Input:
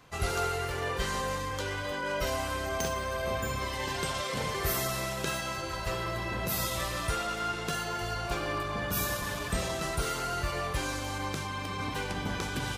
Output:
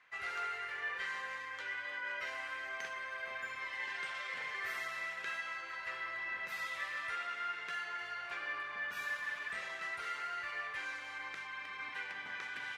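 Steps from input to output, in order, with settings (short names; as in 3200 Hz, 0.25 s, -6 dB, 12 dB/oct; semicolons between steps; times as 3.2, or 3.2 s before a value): band-pass 1900 Hz, Q 3.3; gain +1.5 dB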